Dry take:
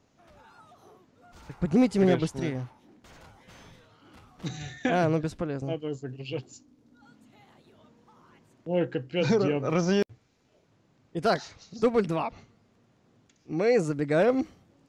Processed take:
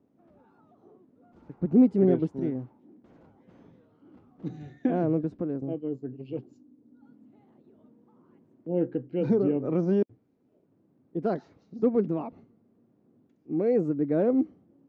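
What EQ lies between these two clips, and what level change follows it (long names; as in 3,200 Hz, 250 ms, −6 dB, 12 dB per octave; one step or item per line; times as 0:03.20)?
resonant band-pass 280 Hz, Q 1.5
+4.0 dB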